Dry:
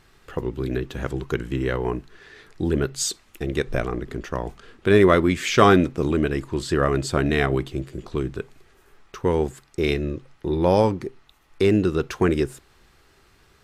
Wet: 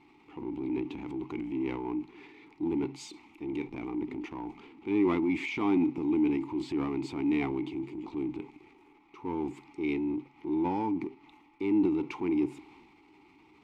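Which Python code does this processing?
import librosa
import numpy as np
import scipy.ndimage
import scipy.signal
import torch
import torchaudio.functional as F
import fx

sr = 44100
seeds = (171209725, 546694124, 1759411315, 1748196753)

y = fx.power_curve(x, sr, exponent=0.7)
y = fx.vowel_filter(y, sr, vowel='u')
y = fx.transient(y, sr, attack_db=-4, sustain_db=6)
y = y * 10.0 ** (-3.0 / 20.0)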